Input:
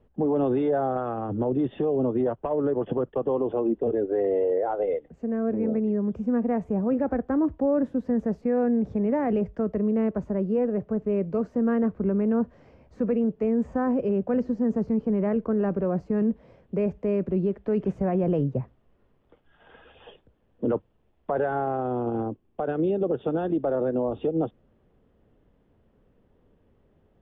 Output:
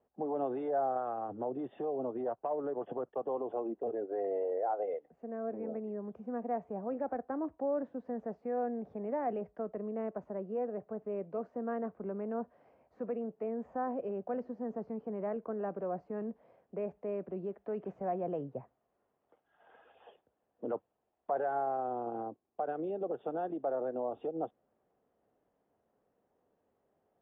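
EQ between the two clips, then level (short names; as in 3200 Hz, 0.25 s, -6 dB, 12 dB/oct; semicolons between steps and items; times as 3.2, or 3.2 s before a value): band-pass 900 Hz, Q 0.63; bell 720 Hz +6.5 dB 0.37 oct; -8.5 dB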